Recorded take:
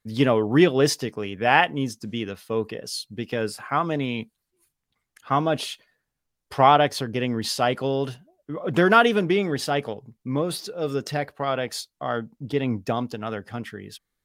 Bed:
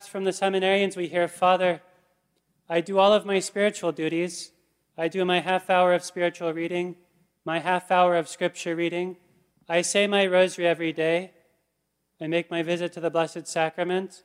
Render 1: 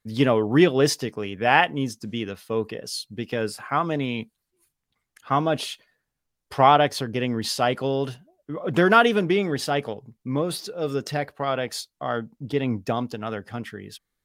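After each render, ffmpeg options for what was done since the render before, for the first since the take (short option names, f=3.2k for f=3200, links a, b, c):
-af anull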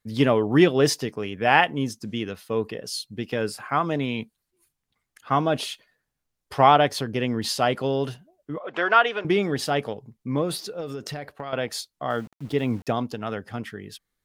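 -filter_complex "[0:a]asettb=1/sr,asplit=3[a][b][c];[a]atrim=end=8.584[d];[b]atrim=start=8.58:end=9.25,asetpts=PTS-STARTPTS,afade=t=in:d=0.004:c=qsin,afade=t=out:st=0.666:d=0.004:c=qsin,highpass=650,lowpass=3.4k[e];[c]atrim=start=9.246[f];[d][e]acrossfade=d=0.004:c1=hsin:c2=qsin[g];[g][f]acrossfade=d=0.004:c1=qsin:c2=hsin,asettb=1/sr,asplit=3[h][i][j];[h]atrim=end=10.804[k];[i]atrim=start=10.8:end=11.53,asetpts=PTS-STARTPTS,afade=t=in:d=0.004:c=qsin,afade=t=out:st=0.726:d=0.004:c=qsin,acompressor=threshold=-28dB:ratio=12:attack=3.2:release=140:knee=1:detection=peak[l];[j]atrim=start=11.526[m];[k][l]acrossfade=d=0.004:c1=hsin:c2=qsin[n];[n][m]acrossfade=d=0.004:c1=qsin:c2=hsin,asettb=1/sr,asplit=3[o][p][q];[o]atrim=end=12.104[r];[p]atrim=start=12.1:end=12.87,asetpts=PTS-STARTPTS,afade=t=in:d=0.004:c=qsin,afade=t=out:st=0.766:d=0.004:c=qsin,aeval=exprs='val(0)*gte(abs(val(0)),0.00596)':c=same[s];[q]atrim=start=12.866[t];[r][s]acrossfade=d=0.004:c1=hsin:c2=qsin[u];[u][t]acrossfade=d=0.004:c1=qsin:c2=hsin"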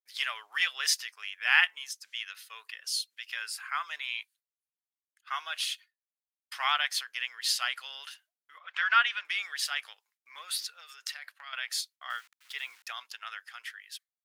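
-af "agate=range=-33dB:threshold=-43dB:ratio=3:detection=peak,highpass=f=1.5k:w=0.5412,highpass=f=1.5k:w=1.3066"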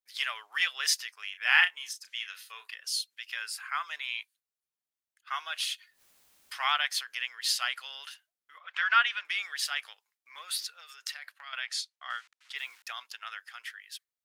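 -filter_complex "[0:a]asettb=1/sr,asplit=3[a][b][c];[a]atrim=end=1.314[d];[b]atrim=start=1.31:end=2.75,asetpts=PTS-STARTPTS,afade=t=in:d=0.004:c=qsin,afade=t=out:st=1.436:d=0.004:c=qsin,asplit=2[e][f];[f]adelay=33,volume=-8.5dB[g];[e][g]amix=inputs=2:normalize=0,atrim=end_sample=63504[h];[c]atrim=start=2.746[i];[d][h]acrossfade=d=0.004:c1=hsin:c2=qsin[j];[j][i]acrossfade=d=0.004:c1=qsin:c2=hsin,asettb=1/sr,asplit=3[k][l][m];[k]atrim=end=5.714[n];[l]atrim=start=5.71:end=7.25,asetpts=PTS-STARTPTS,afade=t=in:d=0.004:c=qsin,afade=t=out:st=1.536:d=0.004:c=qsin,acompressor=mode=upward:threshold=-38dB:ratio=2.5:attack=3.2:release=140:knee=2.83:detection=peak[o];[m]atrim=start=7.246[p];[n][o]acrossfade=d=0.004:c1=hsin:c2=qsin[q];[q][p]acrossfade=d=0.004:c1=qsin:c2=hsin,asettb=1/sr,asplit=3[r][s][t];[r]atrim=end=11.614[u];[s]atrim=start=11.61:end=12.56,asetpts=PTS-STARTPTS,afade=t=in:d=0.004:c=qsin,afade=t=out:st=0.946:d=0.004:c=qsin,highpass=460,lowpass=7.8k[v];[t]atrim=start=12.556[w];[u][v]acrossfade=d=0.004:c1=hsin:c2=qsin[x];[x][w]acrossfade=d=0.004:c1=qsin:c2=hsin"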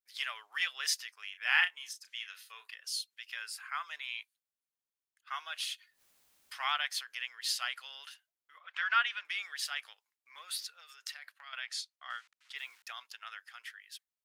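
-af "volume=-5dB"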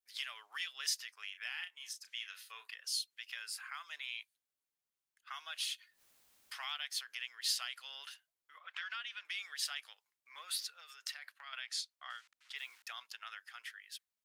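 -filter_complex "[0:a]alimiter=limit=-21.5dB:level=0:latency=1:release=339,acrossover=split=280|3000[a][b][c];[b]acompressor=threshold=-45dB:ratio=6[d];[a][d][c]amix=inputs=3:normalize=0"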